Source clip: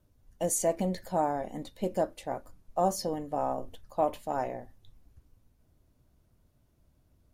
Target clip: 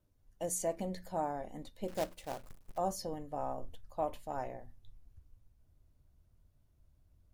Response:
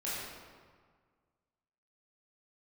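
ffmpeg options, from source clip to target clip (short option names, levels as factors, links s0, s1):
-filter_complex "[0:a]asubboost=boost=2.5:cutoff=140,bandreject=f=60:t=h:w=6,bandreject=f=120:t=h:w=6,bandreject=f=180:t=h:w=6,bandreject=f=240:t=h:w=6,asettb=1/sr,asplit=3[s0][s1][s2];[s0]atrim=end=1.884[s3];[s1]atrim=start=1.88:end=2.78,asetpts=PTS-STARTPTS,afade=t=in:d=0.004:c=qsin,afade=t=out:st=0.896:d=0.004:c=qsin,acrusher=bits=2:mode=log:mix=0:aa=0.000001[s4];[s2]atrim=start=2.776[s5];[s3][s4]acrossfade=d=0.004:c1=hsin:c2=qsin[s6];[s6][s5]acrossfade=d=0.004:c1=qsin:c2=hsin,volume=0.447"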